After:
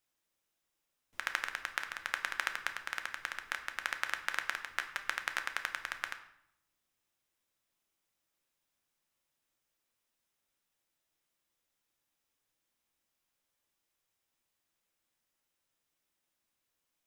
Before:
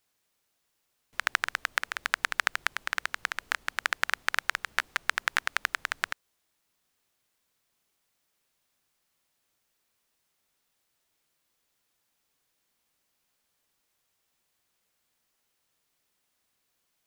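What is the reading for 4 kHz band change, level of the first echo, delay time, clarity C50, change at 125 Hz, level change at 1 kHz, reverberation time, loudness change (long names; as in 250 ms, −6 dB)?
−7.5 dB, no echo audible, no echo audible, 11.0 dB, can't be measured, −7.0 dB, 0.70 s, −7.0 dB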